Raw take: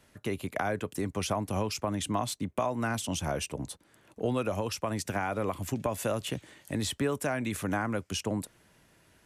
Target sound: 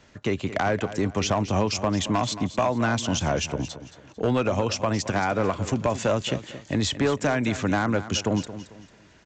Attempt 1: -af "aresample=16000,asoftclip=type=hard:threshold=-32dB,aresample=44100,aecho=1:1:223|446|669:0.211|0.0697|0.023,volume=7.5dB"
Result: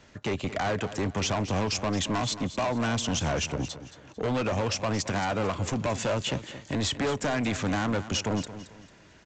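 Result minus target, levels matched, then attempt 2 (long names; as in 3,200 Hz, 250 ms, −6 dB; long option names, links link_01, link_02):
hard clipping: distortion +11 dB
-af "aresample=16000,asoftclip=type=hard:threshold=-23.5dB,aresample=44100,aecho=1:1:223|446|669:0.211|0.0697|0.023,volume=7.5dB"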